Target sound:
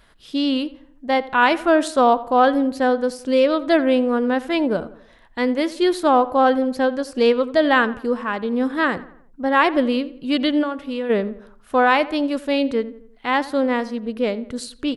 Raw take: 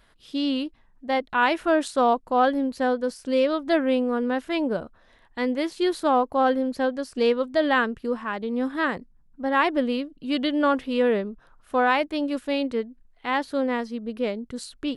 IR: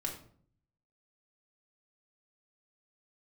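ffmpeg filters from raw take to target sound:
-filter_complex "[0:a]asplit=3[link_01][link_02][link_03];[link_01]afade=type=out:start_time=10.62:duration=0.02[link_04];[link_02]acompressor=threshold=-29dB:ratio=5,afade=type=in:start_time=10.62:duration=0.02,afade=type=out:start_time=11.09:duration=0.02[link_05];[link_03]afade=type=in:start_time=11.09:duration=0.02[link_06];[link_04][link_05][link_06]amix=inputs=3:normalize=0,asplit=2[link_07][link_08];[link_08]adelay=86,lowpass=frequency=2500:poles=1,volume=-16.5dB,asplit=2[link_09][link_10];[link_10]adelay=86,lowpass=frequency=2500:poles=1,volume=0.47,asplit=2[link_11][link_12];[link_12]adelay=86,lowpass=frequency=2500:poles=1,volume=0.47,asplit=2[link_13][link_14];[link_14]adelay=86,lowpass=frequency=2500:poles=1,volume=0.47[link_15];[link_07][link_09][link_11][link_13][link_15]amix=inputs=5:normalize=0,volume=5dB"

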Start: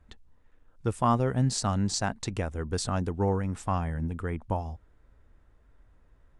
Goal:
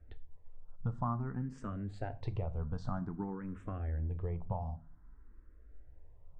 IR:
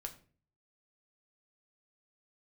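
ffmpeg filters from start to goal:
-filter_complex "[0:a]lowpass=1400,lowshelf=frequency=95:gain=7,acompressor=threshold=-30dB:ratio=6,asplit=2[link_01][link_02];[1:a]atrim=start_sample=2205,highshelf=frequency=3700:gain=10[link_03];[link_02][link_03]afir=irnorm=-1:irlink=0,volume=2.5dB[link_04];[link_01][link_04]amix=inputs=2:normalize=0,asplit=2[link_05][link_06];[link_06]afreqshift=0.52[link_07];[link_05][link_07]amix=inputs=2:normalize=1,volume=-6dB"

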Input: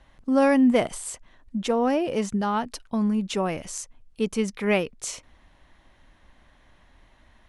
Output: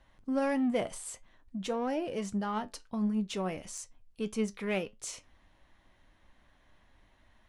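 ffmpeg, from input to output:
ffmpeg -i in.wav -filter_complex "[0:a]asplit=2[link_01][link_02];[link_02]asoftclip=type=tanh:threshold=-26dB,volume=-4dB[link_03];[link_01][link_03]amix=inputs=2:normalize=0,flanger=delay=8.9:depth=2.1:regen=70:speed=1.6:shape=triangular,volume=-7dB" out.wav

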